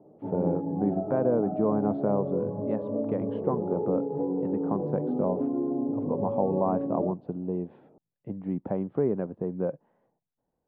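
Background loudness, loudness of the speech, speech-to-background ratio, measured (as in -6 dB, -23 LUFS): -31.0 LUFS, -31.0 LUFS, 0.0 dB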